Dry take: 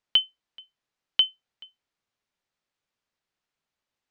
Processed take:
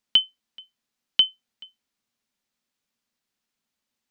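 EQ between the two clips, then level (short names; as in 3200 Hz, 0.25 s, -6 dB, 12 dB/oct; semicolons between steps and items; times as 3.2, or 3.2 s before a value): bell 230 Hz +11.5 dB 0.54 oct; high shelf 3600 Hz +9.5 dB; -1.5 dB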